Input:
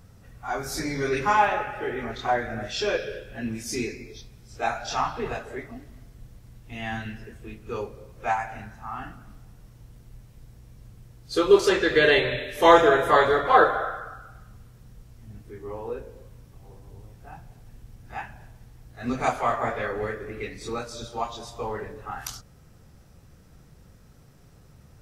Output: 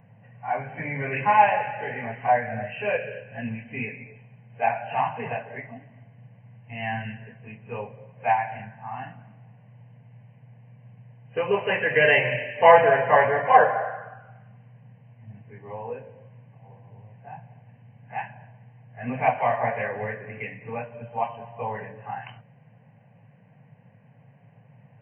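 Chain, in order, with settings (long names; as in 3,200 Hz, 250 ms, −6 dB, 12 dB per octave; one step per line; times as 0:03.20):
low-pass that shuts in the quiet parts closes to 2,300 Hz
brick-wall band-pass 100–3,100 Hz
phaser with its sweep stopped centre 1,300 Hz, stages 6
level +4.5 dB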